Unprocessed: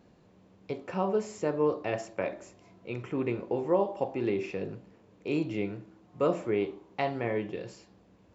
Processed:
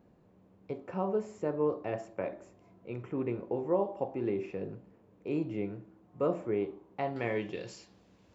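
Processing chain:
parametric band 5,000 Hz −11 dB 2.5 octaves, from 0:07.16 +6.5 dB
level −2.5 dB

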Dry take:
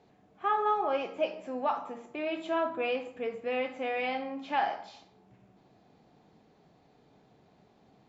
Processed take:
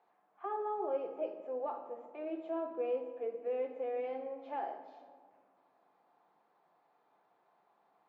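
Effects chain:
high-pass filter 310 Hz 6 dB per octave
envelope filter 400–1,100 Hz, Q 2, down, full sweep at −31.5 dBFS
rectangular room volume 3,200 cubic metres, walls mixed, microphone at 0.8 metres

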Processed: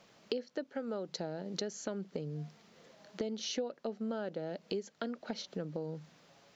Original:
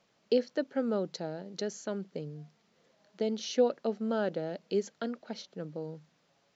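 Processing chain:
0:00.69–0:01.09: low-shelf EQ 270 Hz −8 dB
downward compressor 6 to 1, threshold −44 dBFS, peak gain reduction 21.5 dB
level +8.5 dB

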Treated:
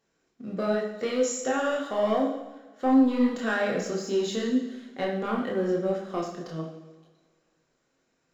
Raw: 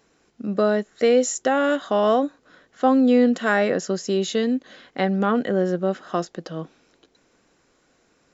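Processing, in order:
leveller curve on the samples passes 1
multi-voice chorus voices 4, 0.89 Hz, delay 27 ms, depth 4.5 ms
coupled-rooms reverb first 0.87 s, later 2.2 s, from −18 dB, DRR 1.5 dB
level −8 dB

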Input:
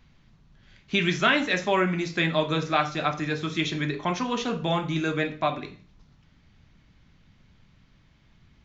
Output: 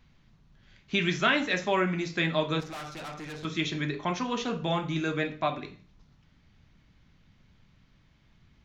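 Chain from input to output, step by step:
0:02.60–0:03.45: tube saturation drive 34 dB, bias 0.55
level −3 dB

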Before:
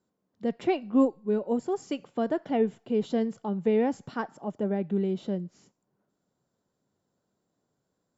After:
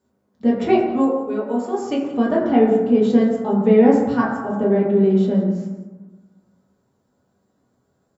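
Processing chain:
0:00.76–0:01.82: high-pass filter 750 Hz 6 dB per octave
single-tap delay 174 ms −16.5 dB
convolution reverb RT60 1.2 s, pre-delay 6 ms, DRR −5.5 dB
level +4 dB

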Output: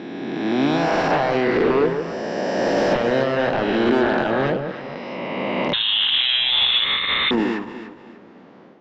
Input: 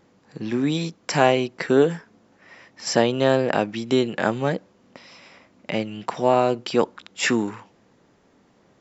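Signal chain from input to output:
peak hold with a rise ahead of every peak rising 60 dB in 2.47 s
high-pass filter 200 Hz 12 dB per octave
in parallel at −2 dB: downward compressor, threshold −28 dBFS, peak gain reduction 16.5 dB
on the sum: brickwall limiter −7.5 dBFS, peak gain reduction 7 dB
automatic gain control gain up to 10 dB
wave folding −7 dBFS
high-frequency loss of the air 280 metres
delay that swaps between a low-pass and a high-pass 147 ms, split 980 Hz, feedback 53%, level −5 dB
on a send at −18 dB: convolution reverb, pre-delay 4 ms
0:05.73–0:07.31: on the sum: voice inversion scrambler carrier 3,900 Hz
level −5 dB

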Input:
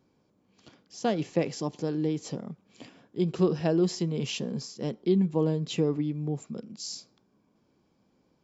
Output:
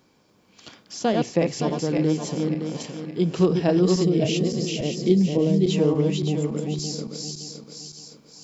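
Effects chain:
feedback delay that plays each chunk backwards 283 ms, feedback 56%, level −3 dB
on a send at −22 dB: convolution reverb RT60 0.45 s, pre-delay 4 ms
on the sum: gain on a spectral selection 0:04.04–0:05.68, 760–1,800 Hz −9 dB
one half of a high-frequency compander encoder only
level +4.5 dB

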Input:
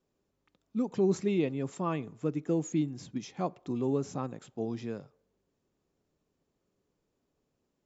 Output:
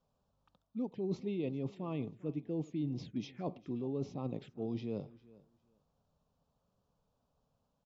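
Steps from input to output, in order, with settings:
low-pass filter 4,100 Hz 12 dB per octave
reversed playback
downward compressor 6 to 1, threshold −39 dBFS, peak gain reduction 16 dB
reversed playback
phaser swept by the level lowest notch 340 Hz, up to 1,600 Hz, full sweep at −40 dBFS
repeating echo 400 ms, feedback 17%, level −21.5 dB
level +5 dB

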